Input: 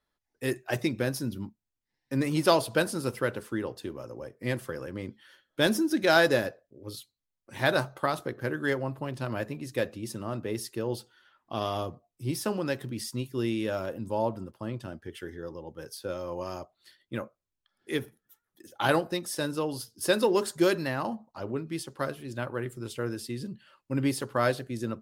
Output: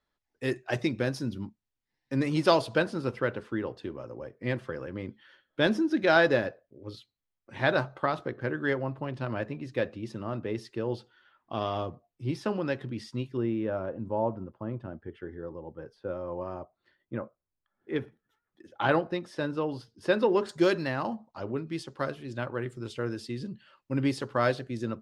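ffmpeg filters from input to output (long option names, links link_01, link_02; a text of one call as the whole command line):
ffmpeg -i in.wav -af "asetnsamples=nb_out_samples=441:pad=0,asendcmd='2.78 lowpass f 3400;13.37 lowpass f 1400;17.96 lowpass f 2700;20.49 lowpass f 5500',lowpass=5700" out.wav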